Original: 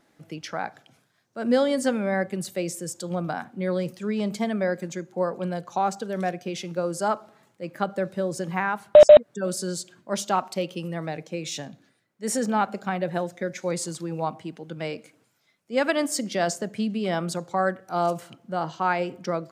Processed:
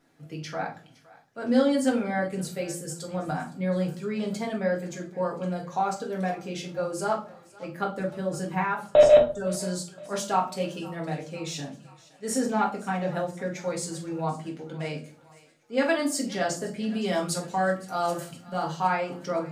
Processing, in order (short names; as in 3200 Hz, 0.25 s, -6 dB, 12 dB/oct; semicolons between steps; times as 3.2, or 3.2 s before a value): 16.87–18.87 high shelf 4000 Hz +9 dB; thinning echo 0.514 s, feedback 63%, high-pass 530 Hz, level -20 dB; reverb RT60 0.35 s, pre-delay 4 ms, DRR -2 dB; gain -6 dB